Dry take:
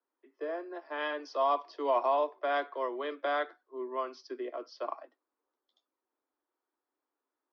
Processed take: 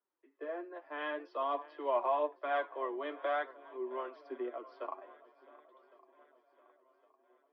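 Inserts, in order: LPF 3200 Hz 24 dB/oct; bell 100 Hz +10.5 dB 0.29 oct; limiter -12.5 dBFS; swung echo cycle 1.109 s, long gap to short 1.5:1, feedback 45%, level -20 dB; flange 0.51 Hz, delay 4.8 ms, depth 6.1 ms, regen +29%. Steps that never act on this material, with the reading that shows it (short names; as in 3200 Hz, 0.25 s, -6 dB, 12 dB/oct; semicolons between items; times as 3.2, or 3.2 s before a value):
bell 100 Hz: input band starts at 240 Hz; limiter -12.5 dBFS: input peak -18.0 dBFS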